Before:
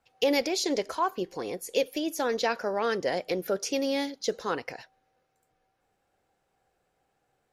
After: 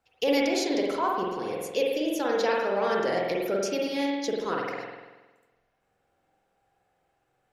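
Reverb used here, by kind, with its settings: spring tank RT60 1.2 s, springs 46 ms, chirp 80 ms, DRR -2.5 dB; gain -2.5 dB

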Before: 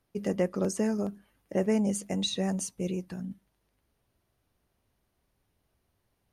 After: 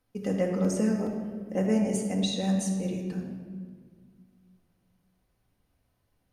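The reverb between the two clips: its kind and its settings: shoebox room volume 2100 m³, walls mixed, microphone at 2 m; gain -2.5 dB

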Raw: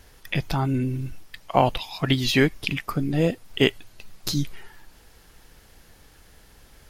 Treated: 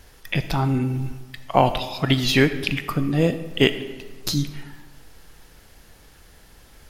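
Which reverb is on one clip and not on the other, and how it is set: digital reverb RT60 1.4 s, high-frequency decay 0.65×, pre-delay 0 ms, DRR 10.5 dB; gain +2 dB

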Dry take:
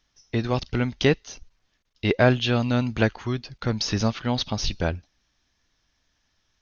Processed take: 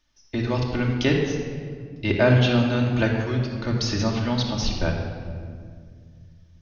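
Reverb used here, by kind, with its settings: shoebox room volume 3300 m³, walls mixed, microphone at 2.6 m; gain -3 dB

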